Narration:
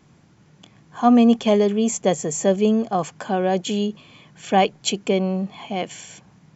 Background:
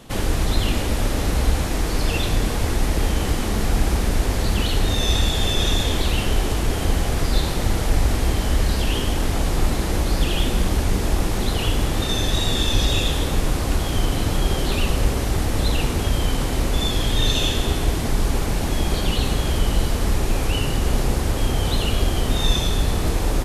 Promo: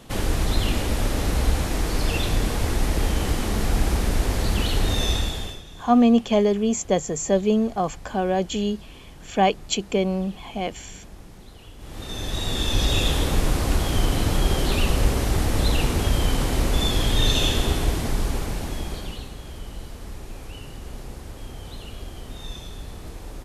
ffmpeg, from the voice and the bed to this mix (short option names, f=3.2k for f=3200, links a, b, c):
-filter_complex "[0:a]adelay=4850,volume=-2dB[a];[1:a]volume=21dB,afade=t=out:st=5.01:d=0.61:silence=0.0841395,afade=t=in:st=11.78:d=1.3:silence=0.0707946,afade=t=out:st=17.57:d=1.73:silence=0.158489[b];[a][b]amix=inputs=2:normalize=0"